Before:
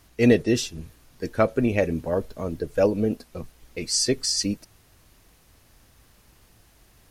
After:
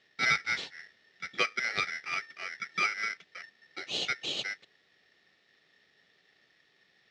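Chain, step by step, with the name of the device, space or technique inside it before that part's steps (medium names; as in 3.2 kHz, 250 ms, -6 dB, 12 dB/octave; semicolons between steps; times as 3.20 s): ring modulator pedal into a guitar cabinet (polarity switched at an audio rate 1.8 kHz; cabinet simulation 98–4500 Hz, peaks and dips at 99 Hz -5 dB, 170 Hz +3 dB, 410 Hz +7 dB, 1 kHz -10 dB, 1.6 kHz -9 dB, 3.7 kHz +4 dB); trim -6.5 dB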